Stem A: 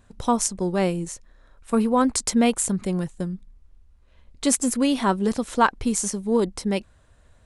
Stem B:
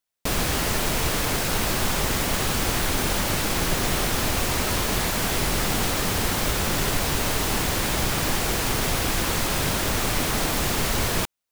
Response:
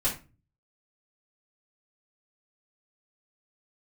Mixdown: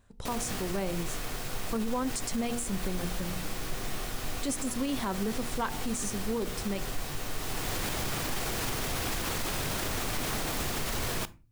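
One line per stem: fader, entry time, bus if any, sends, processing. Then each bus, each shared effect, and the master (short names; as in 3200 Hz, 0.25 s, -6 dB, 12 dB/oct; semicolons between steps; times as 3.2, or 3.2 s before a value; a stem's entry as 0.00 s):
-6.5 dB, 0.00 s, no send, hard clip -10.5 dBFS, distortion -25 dB; de-hum 59.66 Hz, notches 15
-4.0 dB, 0.00 s, send -24 dB, auto duck -12 dB, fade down 0.75 s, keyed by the first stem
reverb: on, RT60 0.30 s, pre-delay 3 ms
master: limiter -22.5 dBFS, peak gain reduction 8.5 dB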